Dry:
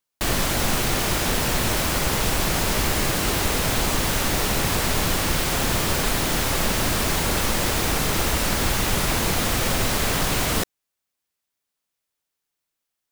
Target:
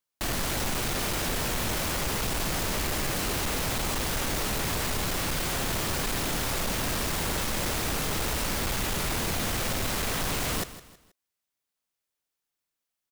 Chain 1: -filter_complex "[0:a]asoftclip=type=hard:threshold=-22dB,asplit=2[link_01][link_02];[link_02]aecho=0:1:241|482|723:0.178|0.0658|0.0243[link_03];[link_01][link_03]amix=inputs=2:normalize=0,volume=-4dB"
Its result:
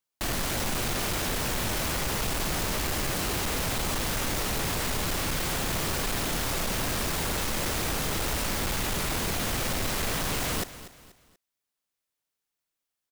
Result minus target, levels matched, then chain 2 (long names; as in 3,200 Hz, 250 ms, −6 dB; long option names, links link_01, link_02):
echo 81 ms late
-filter_complex "[0:a]asoftclip=type=hard:threshold=-22dB,asplit=2[link_01][link_02];[link_02]aecho=0:1:160|320|480:0.178|0.0658|0.0243[link_03];[link_01][link_03]amix=inputs=2:normalize=0,volume=-4dB"